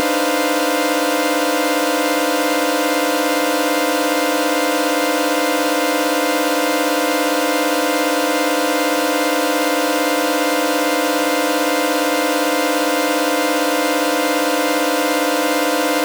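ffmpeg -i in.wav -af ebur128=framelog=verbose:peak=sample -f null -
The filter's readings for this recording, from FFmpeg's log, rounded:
Integrated loudness:
  I:         -16.7 LUFS
  Threshold: -26.7 LUFS
Loudness range:
  LRA:         0.0 LU
  Threshold: -36.7 LUFS
  LRA low:   -16.7 LUFS
  LRA high:  -16.7 LUFS
Sample peak:
  Peak:       -5.4 dBFS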